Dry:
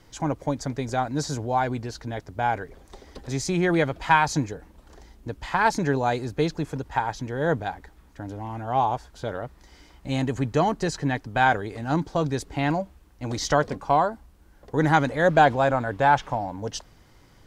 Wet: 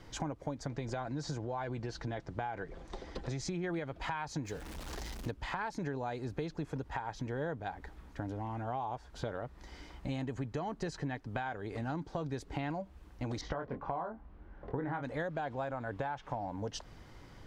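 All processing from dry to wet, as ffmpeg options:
ffmpeg -i in.wav -filter_complex "[0:a]asettb=1/sr,asplit=3[link_01][link_02][link_03];[link_01]atrim=end=0.674[link_04];[link_02]atrim=start=0.67:end=3.64,asetpts=PTS-STARTPTS,afade=type=in:duration=0.004:curve=qsin,afade=type=out:start_time=2.966:duration=0.004:curve=qsin,lowpass=7900,aecho=1:1:5.9:0.36,atrim=end_sample=130977,acompressor=threshold=-27dB:ratio=2.5:attack=3.2:release=140:knee=1:detection=peak[link_05];[link_03]atrim=start=3.636[link_06];[link_04][link_05]acrossfade=duration=0.004:curve1=hsin:curve2=qsin[link_07];[link_07][link_06]acrossfade=duration=0.004:curve1=qsin:curve2=hsin,asettb=1/sr,asplit=3[link_08][link_09][link_10];[link_08]atrim=end=4.454[link_11];[link_09]atrim=start=4.45:end=5.31,asetpts=PTS-STARTPTS,afade=type=in:duration=0.004:curve=qsin,afade=type=out:start_time=0.856:duration=0.004:curve=qsin,aeval=exprs='val(0)+0.5*0.00596*sgn(val(0))':channel_layout=same,highshelf=frequency=2500:gain=11[link_12];[link_10]atrim=start=5.306[link_13];[link_11][link_12]acrossfade=duration=0.004:curve1=hsin:curve2=qsin[link_14];[link_14][link_13]acrossfade=duration=0.004:curve1=qsin:curve2=hsin,asettb=1/sr,asplit=3[link_15][link_16][link_17];[link_15]atrim=end=13.414[link_18];[link_16]atrim=start=13.41:end=15.03,asetpts=PTS-STARTPTS,afade=type=in:duration=0.004:curve=qsin,afade=type=out:start_time=1.616:duration=0.004:curve=qsin,lowpass=2000,asplit=2[link_19][link_20];[link_20]adelay=23,volume=-5.5dB[link_21];[link_19][link_21]amix=inputs=2:normalize=0,atrim=end_sample=71442[link_22];[link_17]atrim=start=15.026[link_23];[link_18][link_22]acrossfade=duration=0.004:curve1=hsin:curve2=qsin[link_24];[link_24][link_23]acrossfade=duration=0.004:curve1=qsin:curve2=hsin,highshelf=frequency=6700:gain=-11.5,alimiter=limit=-17dB:level=0:latency=1:release=306,acompressor=threshold=-37dB:ratio=5,volume=1.5dB" out.wav

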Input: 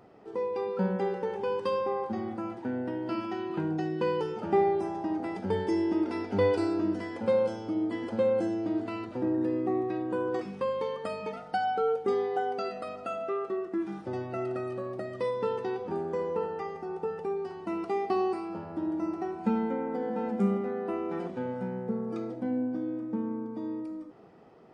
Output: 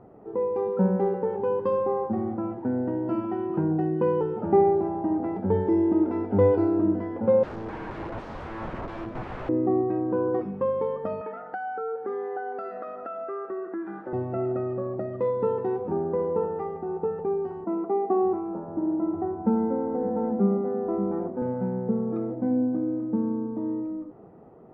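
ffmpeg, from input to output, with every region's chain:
ffmpeg -i in.wav -filter_complex "[0:a]asettb=1/sr,asplit=3[link_01][link_02][link_03];[link_01]atrim=end=7.434[link_04];[link_02]atrim=start=7.43:end=9.49,asetpts=PTS-STARTPTS,afade=type=in:duration=0.004:curve=qsin,afade=type=out:start_time=2.056:duration=0.004:curve=qsin,aemphasis=mode=production:type=75kf,aeval=exprs='(mod(39.8*val(0)+1,2)-1)/39.8':channel_layout=same,aecho=1:1:144:0.335,atrim=end_sample=90846[link_05];[link_03]atrim=start=9.486[link_06];[link_04][link_05]acrossfade=duration=0.004:curve1=hsin:curve2=qsin[link_07];[link_07][link_06]acrossfade=duration=0.004:curve1=qsin:curve2=hsin,asettb=1/sr,asplit=3[link_08][link_09][link_10];[link_08]atrim=end=11.214[link_11];[link_09]atrim=start=11.21:end=14.13,asetpts=PTS-STARTPTS,afade=type=in:duration=0.004:curve=qsin,afade=type=out:start_time=2.916:duration=0.004:curve=qsin,highpass=310,equalizer=frequency=1600:width=2.1:gain=13.5,acompressor=threshold=-36dB:ratio=2.5:attack=3.2:release=140:knee=1:detection=peak[link_12];[link_10]atrim=start=14.126[link_13];[link_11][link_12]acrossfade=duration=0.004:curve1=hsin:curve2=qsin[link_14];[link_14][link_13]acrossfade=duration=0.004:curve1=qsin:curve2=hsin,asettb=1/sr,asplit=3[link_15][link_16][link_17];[link_15]atrim=end=17.644[link_18];[link_16]atrim=start=17.64:end=21.42,asetpts=PTS-STARTPTS,afade=type=in:duration=0.004:curve=qsin,afade=type=out:start_time=3.776:duration=0.004:curve=qsin,lowpass=1500,acrossover=split=160[link_19][link_20];[link_19]adelay=580[link_21];[link_21][link_20]amix=inputs=2:normalize=0,atrim=end_sample=166698[link_22];[link_17]atrim=start=21.416[link_23];[link_18][link_22]acrossfade=duration=0.004:curve1=hsin:curve2=qsin[link_24];[link_24][link_23]acrossfade=duration=0.004:curve1=qsin:curve2=hsin,lowpass=1000,lowshelf=frequency=130:gain=5.5,volume=5dB" out.wav

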